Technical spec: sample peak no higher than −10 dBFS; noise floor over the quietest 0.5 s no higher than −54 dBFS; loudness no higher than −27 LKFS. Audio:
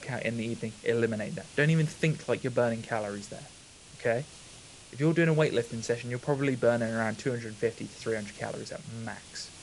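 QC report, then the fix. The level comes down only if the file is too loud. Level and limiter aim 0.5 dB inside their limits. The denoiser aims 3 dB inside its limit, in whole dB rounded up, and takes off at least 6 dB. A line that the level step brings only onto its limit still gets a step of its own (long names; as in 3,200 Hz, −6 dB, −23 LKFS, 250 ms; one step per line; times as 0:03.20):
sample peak −11.5 dBFS: in spec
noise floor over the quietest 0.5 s −51 dBFS: out of spec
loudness −30.5 LKFS: in spec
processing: broadband denoise 6 dB, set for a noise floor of −51 dBFS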